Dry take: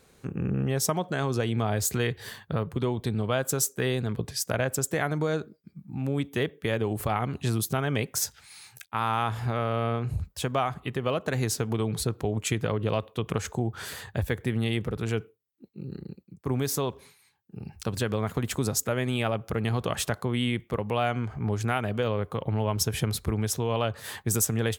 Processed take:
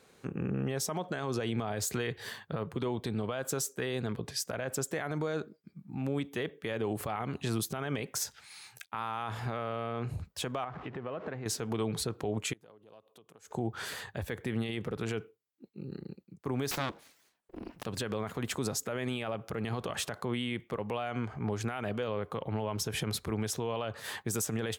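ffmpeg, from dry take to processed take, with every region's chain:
-filter_complex "[0:a]asettb=1/sr,asplit=3[s0][s1][s2];[s0]atrim=end=10.644[s3];[s1]atrim=start=10.64:end=11.46,asetpts=PTS-STARTPTS,afade=t=in:d=0.004:c=qsin,afade=t=out:st=0.816:d=0.004:c=qsin,aeval=exprs='val(0)+0.5*0.0119*sgn(val(0))':c=same,lowpass=1900,acompressor=threshold=0.0224:ratio=6:attack=3.2:release=140:knee=1:detection=peak[s4];[s2]atrim=start=11.456[s5];[s3][s4]acrossfade=d=0.004:c1=hsin:c2=qsin[s6];[s6][s5]acrossfade=d=0.004:c1=qsin:c2=hsin,asettb=1/sr,asplit=3[s7][s8][s9];[s7]atrim=end=12.534[s10];[s8]atrim=start=12.53:end=13.51,asetpts=PTS-STARTPTS,afade=t=in:d=0.004:c=qsin,afade=t=out:st=0.976:d=0.004:c=qsin,equalizer=f=2100:w=0.4:g=-14.5,acompressor=threshold=0.00447:ratio=3:attack=3.2:release=140:knee=1:detection=peak,highpass=f=740:p=1[s11];[s9]atrim=start=13.506[s12];[s10][s11]acrossfade=d=0.004:c1=hsin:c2=qsin[s13];[s13][s12]acrossfade=d=0.004:c1=qsin:c2=hsin,asettb=1/sr,asplit=3[s14][s15][s16];[s14]atrim=end=16.714[s17];[s15]atrim=start=16.71:end=17.86,asetpts=PTS-STARTPTS,afade=t=in:d=0.004:c=qsin,afade=t=out:st=1.146:d=0.004:c=qsin,bass=f=250:g=5,treble=f=4000:g=3,bandreject=f=470:w=5.1,aeval=exprs='abs(val(0))':c=same[s18];[s16]atrim=start=17.856[s19];[s17][s18]acrossfade=d=0.004:c1=hsin:c2=qsin[s20];[s20][s19]acrossfade=d=0.004:c1=qsin:c2=hsin,highpass=f=220:p=1,highshelf=f=8300:g=-7.5,alimiter=limit=0.0708:level=0:latency=1:release=38"

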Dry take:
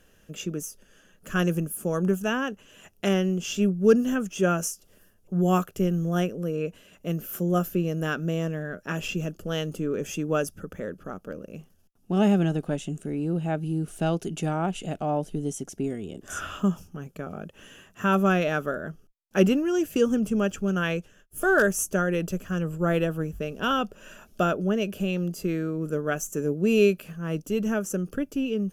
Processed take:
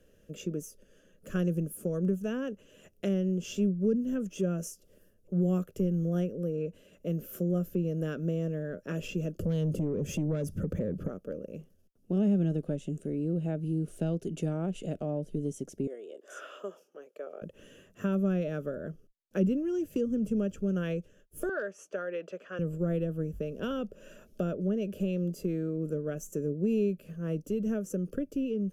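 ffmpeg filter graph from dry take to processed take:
-filter_complex "[0:a]asettb=1/sr,asplit=3[s0][s1][s2];[s0]atrim=end=9.394[s3];[s1]atrim=start=9.39:end=11.08,asetpts=PTS-STARTPTS,afade=t=in:d=0.004:c=qsin,afade=t=out:st=1.686:d=0.004:c=qsin,equalizer=f=120:t=o:w=2.3:g=11,acompressor=threshold=0.02:ratio=2.5:attack=3.2:release=140:knee=1:detection=peak,aeval=exprs='0.0794*sin(PI/2*1.78*val(0)/0.0794)':c=same[s4];[s2]atrim=start=11.076[s5];[s3][s4]acrossfade=d=0.004:c1=hsin:c2=qsin[s6];[s6][s5]acrossfade=d=0.004:c1=qsin:c2=hsin,asettb=1/sr,asplit=3[s7][s8][s9];[s7]atrim=end=15.874[s10];[s8]atrim=start=15.87:end=17.42,asetpts=PTS-STARTPTS,afade=t=in:d=0.004:c=qsin,afade=t=out:st=1.546:d=0.004:c=qsin,highpass=f=440:w=0.5412,highpass=f=440:w=1.3066,aemphasis=mode=reproduction:type=cd[s11];[s9]atrim=start=17.416[s12];[s10][s11]acrossfade=d=0.004:c1=hsin:c2=qsin[s13];[s13][s12]acrossfade=d=0.004:c1=qsin:c2=hsin,asettb=1/sr,asplit=3[s14][s15][s16];[s14]atrim=end=21.494[s17];[s15]atrim=start=21.49:end=22.59,asetpts=PTS-STARTPTS,afade=t=in:d=0.004:c=qsin,afade=t=out:st=1.096:d=0.004:c=qsin,highpass=790,lowpass=2700,acontrast=46[s18];[s16]atrim=start=22.586[s19];[s17][s18]acrossfade=d=0.004:c1=hsin:c2=qsin[s20];[s20][s19]acrossfade=d=0.004:c1=qsin:c2=hsin,lowshelf=f=670:t=q:w=3:g=6,acrossover=split=240[s21][s22];[s22]acompressor=threshold=0.0631:ratio=5[s23];[s21][s23]amix=inputs=2:normalize=0,volume=0.355"

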